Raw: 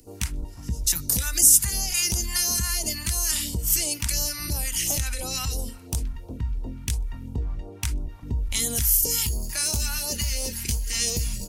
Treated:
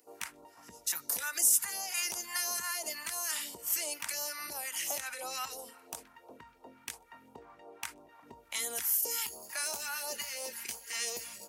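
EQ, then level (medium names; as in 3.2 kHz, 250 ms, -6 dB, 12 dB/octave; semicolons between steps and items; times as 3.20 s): high-pass 350 Hz 12 dB/octave; three-band isolator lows -14 dB, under 570 Hz, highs -13 dB, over 2.1 kHz; treble shelf 10 kHz +6 dB; 0.0 dB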